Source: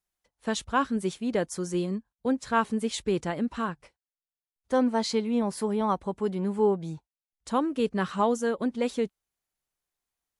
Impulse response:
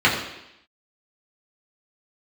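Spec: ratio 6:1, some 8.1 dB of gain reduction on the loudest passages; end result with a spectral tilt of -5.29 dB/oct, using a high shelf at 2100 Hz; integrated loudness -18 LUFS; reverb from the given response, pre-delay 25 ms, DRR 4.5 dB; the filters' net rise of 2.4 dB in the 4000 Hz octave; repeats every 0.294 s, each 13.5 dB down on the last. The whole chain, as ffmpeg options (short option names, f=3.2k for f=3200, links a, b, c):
-filter_complex "[0:a]highshelf=f=2.1k:g=-4.5,equalizer=f=4k:t=o:g=7,acompressor=threshold=-28dB:ratio=6,aecho=1:1:294|588:0.211|0.0444,asplit=2[a][b];[1:a]atrim=start_sample=2205,adelay=25[c];[b][c]afir=irnorm=-1:irlink=0,volume=-26dB[d];[a][d]amix=inputs=2:normalize=0,volume=14.5dB"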